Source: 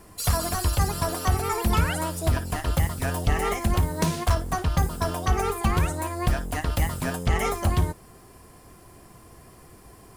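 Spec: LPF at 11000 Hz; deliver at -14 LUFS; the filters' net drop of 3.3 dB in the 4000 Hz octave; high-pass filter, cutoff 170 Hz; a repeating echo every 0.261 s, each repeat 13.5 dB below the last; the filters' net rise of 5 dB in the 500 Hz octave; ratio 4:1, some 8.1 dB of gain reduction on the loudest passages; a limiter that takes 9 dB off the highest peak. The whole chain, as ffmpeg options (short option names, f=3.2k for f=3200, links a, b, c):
-af "highpass=170,lowpass=11k,equalizer=f=500:t=o:g=7,equalizer=f=4k:t=o:g=-4.5,acompressor=threshold=-29dB:ratio=4,alimiter=level_in=0.5dB:limit=-24dB:level=0:latency=1,volume=-0.5dB,aecho=1:1:261|522:0.211|0.0444,volume=20.5dB"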